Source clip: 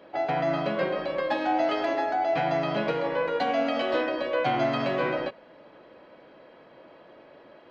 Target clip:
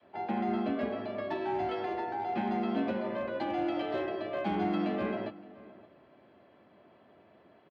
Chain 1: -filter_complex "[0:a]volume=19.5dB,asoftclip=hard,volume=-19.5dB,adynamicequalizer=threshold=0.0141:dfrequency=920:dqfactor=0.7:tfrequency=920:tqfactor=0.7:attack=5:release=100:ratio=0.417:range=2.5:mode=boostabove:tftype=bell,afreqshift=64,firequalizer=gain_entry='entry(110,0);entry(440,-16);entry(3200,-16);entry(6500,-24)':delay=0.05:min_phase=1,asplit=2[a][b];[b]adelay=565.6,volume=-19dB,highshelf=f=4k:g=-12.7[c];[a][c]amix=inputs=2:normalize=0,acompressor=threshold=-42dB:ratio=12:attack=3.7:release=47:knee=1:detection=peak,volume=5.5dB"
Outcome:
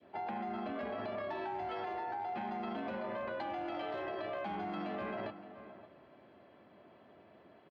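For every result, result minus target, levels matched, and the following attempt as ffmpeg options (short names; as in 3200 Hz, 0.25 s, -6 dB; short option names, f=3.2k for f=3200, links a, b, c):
compressor: peak gain reduction +10.5 dB; 250 Hz band -4.0 dB
-filter_complex "[0:a]volume=19.5dB,asoftclip=hard,volume=-19.5dB,adynamicequalizer=threshold=0.0141:dfrequency=920:dqfactor=0.7:tfrequency=920:tqfactor=0.7:attack=5:release=100:ratio=0.417:range=2.5:mode=boostabove:tftype=bell,afreqshift=64,firequalizer=gain_entry='entry(110,0);entry(440,-16);entry(3200,-16);entry(6500,-24)':delay=0.05:min_phase=1,asplit=2[a][b];[b]adelay=565.6,volume=-19dB,highshelf=f=4k:g=-12.7[c];[a][c]amix=inputs=2:normalize=0,volume=5.5dB"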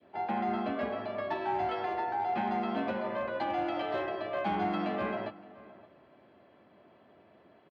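250 Hz band -3.5 dB
-filter_complex "[0:a]volume=19.5dB,asoftclip=hard,volume=-19.5dB,adynamicequalizer=threshold=0.0141:dfrequency=250:dqfactor=0.7:tfrequency=250:tqfactor=0.7:attack=5:release=100:ratio=0.417:range=2.5:mode=boostabove:tftype=bell,afreqshift=64,firequalizer=gain_entry='entry(110,0);entry(440,-16);entry(3200,-16);entry(6500,-24)':delay=0.05:min_phase=1,asplit=2[a][b];[b]adelay=565.6,volume=-19dB,highshelf=f=4k:g=-12.7[c];[a][c]amix=inputs=2:normalize=0,volume=5.5dB"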